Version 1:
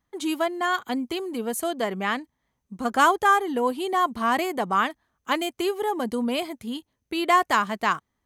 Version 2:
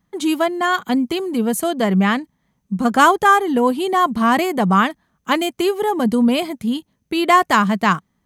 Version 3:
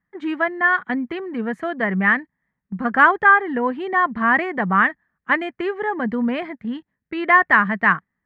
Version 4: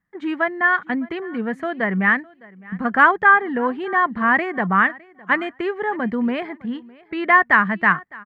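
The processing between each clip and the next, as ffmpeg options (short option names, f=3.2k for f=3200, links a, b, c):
-af "equalizer=f=180:w=2.1:g=13.5,volume=6dB"
-af "agate=range=-7dB:threshold=-27dB:ratio=16:detection=peak,lowpass=f=1.8k:t=q:w=5.6,volume=-6.5dB"
-af "aecho=1:1:609|1218:0.0708|0.012"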